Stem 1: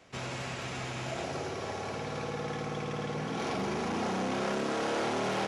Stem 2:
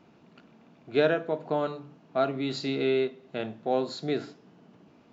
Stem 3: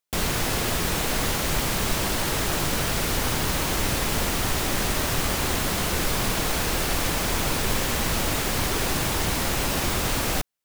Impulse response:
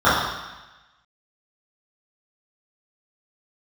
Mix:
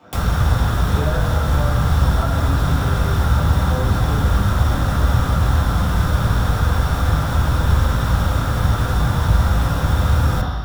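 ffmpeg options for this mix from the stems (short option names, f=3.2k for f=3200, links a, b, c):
-filter_complex "[0:a]volume=-6.5dB,asplit=2[a][b];[b]volume=-7.5dB[c];[1:a]volume=2.5dB,asplit=2[d][e];[e]volume=-16dB[f];[2:a]volume=3dB,asplit=2[g][h];[h]volume=-13.5dB[i];[3:a]atrim=start_sample=2205[j];[c][f][i]amix=inputs=3:normalize=0[k];[k][j]afir=irnorm=-1:irlink=0[l];[a][d][g][l]amix=inputs=4:normalize=0,acrossover=split=140[m][n];[n]acompressor=threshold=-36dB:ratio=2[o];[m][o]amix=inputs=2:normalize=0"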